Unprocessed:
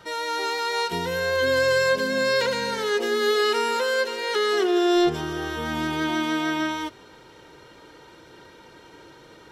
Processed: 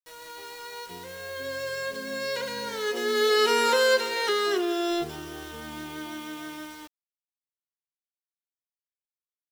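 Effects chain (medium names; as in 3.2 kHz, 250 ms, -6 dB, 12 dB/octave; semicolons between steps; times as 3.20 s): Doppler pass-by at 3.78 s, 7 m/s, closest 2.9 m; treble shelf 3.9 kHz +3.5 dB; doubling 42 ms -13.5 dB; word length cut 8-bit, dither none; trim +2 dB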